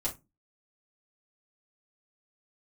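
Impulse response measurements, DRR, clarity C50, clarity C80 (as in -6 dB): -6.0 dB, 13.5 dB, 24.5 dB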